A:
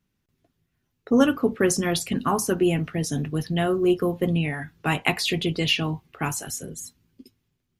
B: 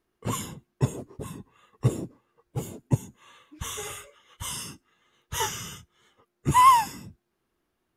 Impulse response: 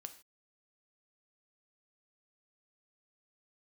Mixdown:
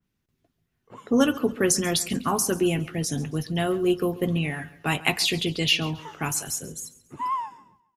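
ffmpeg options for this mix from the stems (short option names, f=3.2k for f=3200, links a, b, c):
-filter_complex "[0:a]adynamicequalizer=threshold=0.0126:dfrequency=2900:dqfactor=0.7:tfrequency=2900:tqfactor=0.7:attack=5:release=100:ratio=0.375:range=3:mode=boostabove:tftype=highshelf,volume=-2dB,asplit=3[a][b][c];[b]volume=-18.5dB[d];[1:a]bandpass=f=740:t=q:w=0.7:csg=0,adelay=650,volume=-10.5dB,asplit=2[e][f];[f]volume=-19.5dB[g];[c]apad=whole_len=380060[h];[e][h]sidechaincompress=threshold=-26dB:ratio=8:attack=16:release=142[i];[d][g]amix=inputs=2:normalize=0,aecho=0:1:137|274|411|548|685:1|0.35|0.122|0.0429|0.015[j];[a][i][j]amix=inputs=3:normalize=0"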